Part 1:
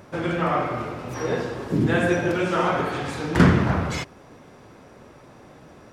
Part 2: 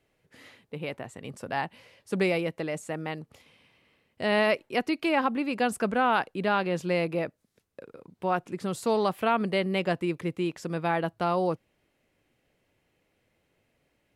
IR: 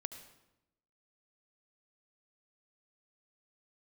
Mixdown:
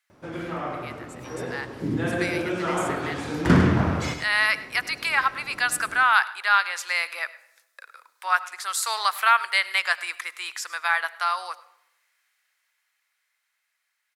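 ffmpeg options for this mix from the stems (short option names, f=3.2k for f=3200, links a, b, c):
-filter_complex "[0:a]adelay=100,volume=-9dB,asplit=2[a][b];[b]volume=-7.5dB[c];[1:a]highpass=f=1.3k:w=0.5412,highpass=f=1.3k:w=1.3066,equalizer=f=2.8k:w=2.3:g=-9,volume=0dB,asplit=3[d][e][f];[e]volume=-4.5dB[g];[f]volume=-18dB[h];[2:a]atrim=start_sample=2205[i];[g][i]afir=irnorm=-1:irlink=0[j];[c][h]amix=inputs=2:normalize=0,aecho=0:1:103:1[k];[a][d][j][k]amix=inputs=4:normalize=0,equalizer=f=290:t=o:w=0.28:g=4,dynaudnorm=f=520:g=13:m=13dB"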